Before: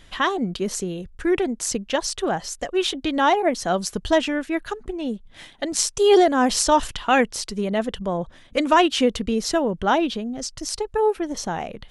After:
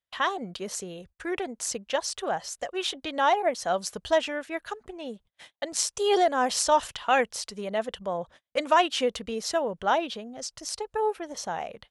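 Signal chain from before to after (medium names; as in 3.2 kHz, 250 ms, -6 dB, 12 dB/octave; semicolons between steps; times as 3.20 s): high-pass 54 Hz 12 dB/octave; gate -42 dBFS, range -35 dB; resonant low shelf 420 Hz -6.5 dB, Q 1.5; trim -5 dB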